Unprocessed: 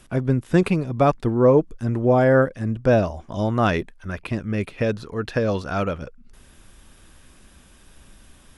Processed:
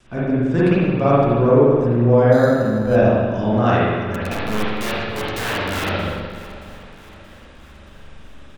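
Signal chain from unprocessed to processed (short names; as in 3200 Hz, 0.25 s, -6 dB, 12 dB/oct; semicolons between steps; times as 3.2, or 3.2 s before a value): LPF 7800 Hz 24 dB/oct; notches 50/100/150 Hz; in parallel at -3 dB: compressor 4:1, threshold -28 dBFS, peak gain reduction 14.5 dB; 4.14–5.89 on the sum: wrapped overs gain 18 dB; vibrato 1.7 Hz 41 cents; on a send: feedback echo 0.626 s, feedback 57%, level -18 dB; on the sum: spring tank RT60 1.6 s, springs 42/56 ms, chirp 35 ms, DRR -8.5 dB; 2.32–2.96 decimation joined by straight lines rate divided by 8×; gain -7 dB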